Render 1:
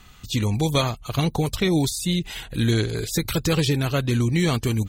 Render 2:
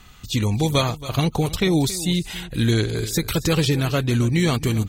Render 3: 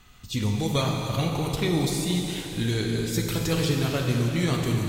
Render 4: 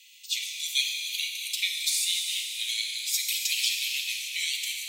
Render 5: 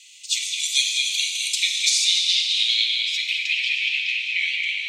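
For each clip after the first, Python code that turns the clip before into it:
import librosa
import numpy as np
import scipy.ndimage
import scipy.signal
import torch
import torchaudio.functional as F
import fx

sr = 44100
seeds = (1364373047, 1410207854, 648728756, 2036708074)

y1 = x + 10.0 ** (-16.0 / 20.0) * np.pad(x, (int(275 * sr / 1000.0), 0))[:len(x)]
y1 = F.gain(torch.from_numpy(y1), 1.5).numpy()
y2 = fx.rev_plate(y1, sr, seeds[0], rt60_s=3.6, hf_ratio=0.9, predelay_ms=0, drr_db=0.5)
y2 = F.gain(torch.from_numpy(y2), -7.0).numpy()
y3 = scipy.signal.sosfilt(scipy.signal.butter(12, 2200.0, 'highpass', fs=sr, output='sos'), y2)
y3 = F.gain(torch.from_numpy(y3), 6.5).numpy()
y4 = fx.echo_stepped(y3, sr, ms=210, hz=2800.0, octaves=0.7, feedback_pct=70, wet_db=-3.0)
y4 = fx.filter_sweep_lowpass(y4, sr, from_hz=7900.0, to_hz=2300.0, start_s=1.54, end_s=3.61, q=2.0)
y4 = F.gain(torch.from_numpy(y4), 4.0).numpy()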